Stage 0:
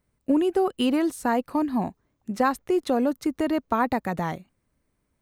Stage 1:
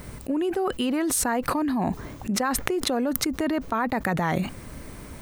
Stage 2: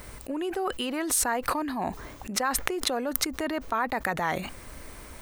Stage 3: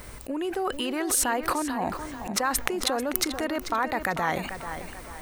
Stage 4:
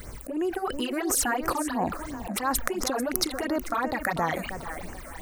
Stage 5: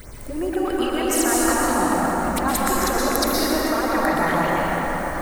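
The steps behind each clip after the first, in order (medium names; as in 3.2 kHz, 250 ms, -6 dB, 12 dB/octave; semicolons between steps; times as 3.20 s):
dynamic bell 1.7 kHz, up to +5 dB, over -38 dBFS, Q 1.4; level flattener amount 100%; trim -6.5 dB
peaking EQ 160 Hz -11 dB 2.3 oct
tape echo 441 ms, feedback 41%, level -9 dB, low-pass 5.3 kHz; trim +1 dB
phase shifter stages 8, 2.9 Hz, lowest notch 110–3900 Hz; trim +2 dB
plate-style reverb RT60 5 s, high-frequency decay 0.45×, pre-delay 105 ms, DRR -6 dB; trim +1 dB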